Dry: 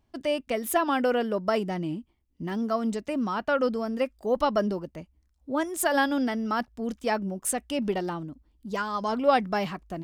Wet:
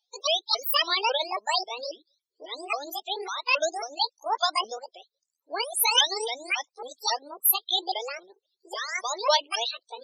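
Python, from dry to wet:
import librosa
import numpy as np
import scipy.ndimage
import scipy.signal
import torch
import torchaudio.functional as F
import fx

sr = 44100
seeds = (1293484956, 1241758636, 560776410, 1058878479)

p1 = fx.pitch_ramps(x, sr, semitones=11.5, every_ms=273)
p2 = scipy.signal.sosfilt(scipy.signal.butter(4, 490.0, 'highpass', fs=sr, output='sos'), p1)
p3 = fx.high_shelf_res(p2, sr, hz=2600.0, db=13.5, q=1.5)
p4 = np.sign(p3) * np.maximum(np.abs(p3) - 10.0 ** (-46.5 / 20.0), 0.0)
p5 = p3 + (p4 * librosa.db_to_amplitude(-5.5))
p6 = fx.spec_topn(p5, sr, count=32)
y = p6 * librosa.db_to_amplitude(-3.0)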